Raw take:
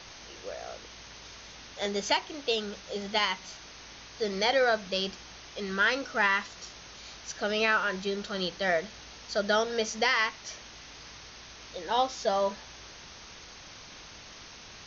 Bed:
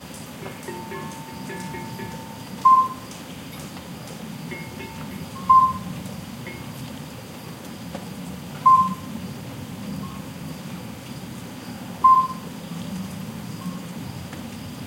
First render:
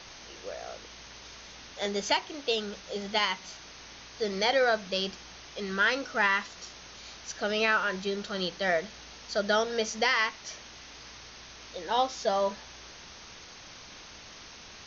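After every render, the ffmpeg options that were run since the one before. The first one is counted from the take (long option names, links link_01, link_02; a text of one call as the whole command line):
ffmpeg -i in.wav -af "bandreject=frequency=50:width_type=h:width=4,bandreject=frequency=100:width_type=h:width=4,bandreject=frequency=150:width_type=h:width=4" out.wav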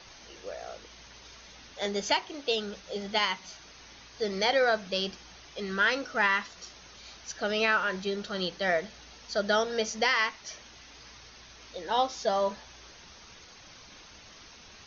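ffmpeg -i in.wav -af "afftdn=noise_reduction=6:noise_floor=-48" out.wav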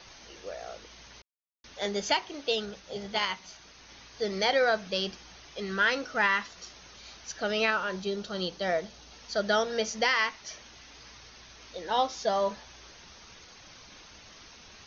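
ffmpeg -i in.wav -filter_complex "[0:a]asettb=1/sr,asplit=3[link_01][link_02][link_03];[link_01]atrim=end=2.654[link_04];[link_02]atrim=start=2.65:end=3.89,asetpts=PTS-STARTPTS,afade=type=in:duration=0.004:curve=qsin,afade=type=out:start_time=1.236:duration=0.004:curve=qsin,tremolo=f=270:d=0.462[link_05];[link_03]atrim=start=3.886[link_06];[link_04][link_05]acrossfade=duration=0.004:curve1=hsin:curve2=qsin[link_07];[link_07][link_06]acrossfade=duration=0.004:curve1=qsin:curve2=hsin,asettb=1/sr,asplit=3[link_08][link_09][link_10];[link_08]atrim=end=7.704[link_11];[link_09]atrim=start=7.7:end=9.12,asetpts=PTS-STARTPTS,afade=type=in:duration=0.004:curve=qsin,afade=type=out:start_time=1.416:duration=0.004:curve=qsin,equalizer=frequency=1900:width=1.5:gain=-6[link_12];[link_10]atrim=start=9.116[link_13];[link_11][link_12]acrossfade=duration=0.004:curve1=hsin:curve2=qsin[link_14];[link_14][link_13]acrossfade=duration=0.004:curve1=qsin:curve2=hsin,asplit=3[link_15][link_16][link_17];[link_15]atrim=end=1.22,asetpts=PTS-STARTPTS,afade=type=out:start_time=1.216:duration=0.004:curve=hsin[link_18];[link_16]atrim=start=1.22:end=1.64,asetpts=PTS-STARTPTS,volume=0[link_19];[link_17]atrim=start=1.64,asetpts=PTS-STARTPTS,afade=type=in:duration=0.004:curve=hsin[link_20];[link_18][link_19][link_20]concat=n=3:v=0:a=1" out.wav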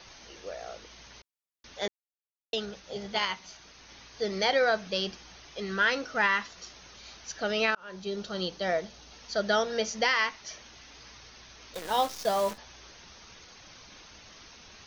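ffmpeg -i in.wav -filter_complex "[0:a]asettb=1/sr,asplit=3[link_01][link_02][link_03];[link_01]atrim=end=11.744[link_04];[link_02]atrim=start=11.74:end=12.58,asetpts=PTS-STARTPTS,afade=type=in:duration=0.004:curve=qsin,afade=type=out:start_time=0.836:duration=0.004:curve=qsin,acrusher=bits=7:dc=4:mix=0:aa=0.000001[link_05];[link_03]atrim=start=12.576[link_06];[link_04][link_05]acrossfade=duration=0.004:curve1=hsin:curve2=qsin[link_07];[link_07][link_06]acrossfade=duration=0.004:curve1=qsin:curve2=hsin,asplit=4[link_08][link_09][link_10][link_11];[link_08]atrim=end=1.88,asetpts=PTS-STARTPTS,afade=type=out:start_time=1.876:duration=0.004:curve=hsin[link_12];[link_09]atrim=start=1.88:end=2.53,asetpts=PTS-STARTPTS,volume=0[link_13];[link_10]atrim=start=2.53:end=7.75,asetpts=PTS-STARTPTS,afade=type=in:duration=0.004:curve=hsin,afade=type=out:start_time=5.216:duration=0.004:curve=hsin[link_14];[link_11]atrim=start=7.75,asetpts=PTS-STARTPTS,afade=type=in:duration=0.45[link_15];[link_12][link_13][link_14][link_15]concat=n=4:v=0:a=1" out.wav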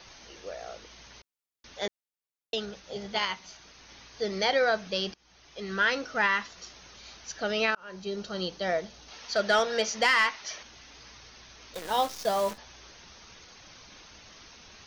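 ffmpeg -i in.wav -filter_complex "[0:a]asettb=1/sr,asplit=3[link_01][link_02][link_03];[link_01]atrim=end=7.734[link_04];[link_02]atrim=start=7.73:end=8.49,asetpts=PTS-STARTPTS,afade=type=in:duration=0.004:curve=qsin,afade=type=out:start_time=0.756:duration=0.004:curve=qsin,bandreject=frequency=3500:width=12[link_05];[link_03]atrim=start=8.486[link_06];[link_04][link_05]acrossfade=duration=0.004:curve1=hsin:curve2=qsin[link_07];[link_07][link_06]acrossfade=duration=0.004:curve1=qsin:curve2=hsin,asettb=1/sr,asplit=3[link_08][link_09][link_10];[link_08]atrim=end=9.084[link_11];[link_09]atrim=start=9.08:end=10.63,asetpts=PTS-STARTPTS,afade=type=in:duration=0.004:curve=qsin,afade=type=out:start_time=1.546:duration=0.004:curve=qsin,asplit=2[link_12][link_13];[link_13]highpass=frequency=720:poles=1,volume=11dB,asoftclip=type=tanh:threshold=-14dB[link_14];[link_12][link_14]amix=inputs=2:normalize=0,lowpass=frequency=5000:poles=1,volume=-6dB[link_15];[link_10]atrim=start=10.626[link_16];[link_11][link_15]acrossfade=duration=0.004:curve1=hsin:curve2=qsin[link_17];[link_17][link_16]acrossfade=duration=0.004:curve1=qsin:curve2=hsin,asplit=2[link_18][link_19];[link_18]atrim=end=5.14,asetpts=PTS-STARTPTS,afade=type=out:start_time=5.136:duration=0.004:curve=hsin:silence=0.0668344[link_20];[link_19]atrim=start=5.14,asetpts=PTS-STARTPTS,afade=type=in:duration=0.64:silence=0.0668344[link_21];[link_20][link_21]concat=n=2:v=0:a=1" out.wav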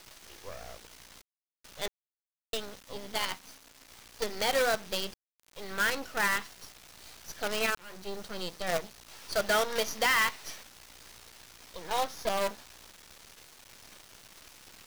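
ffmpeg -i in.wav -af "acrusher=bits=5:dc=4:mix=0:aa=0.000001,asoftclip=type=tanh:threshold=-20.5dB" out.wav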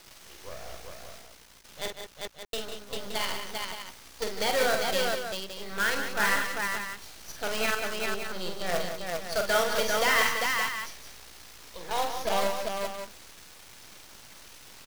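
ffmpeg -i in.wav -af "aecho=1:1:46|152|186|396|571:0.531|0.299|0.355|0.708|0.355" out.wav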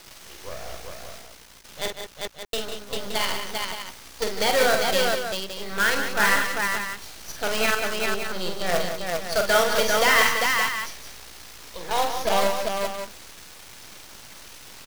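ffmpeg -i in.wav -af "volume=5.5dB" out.wav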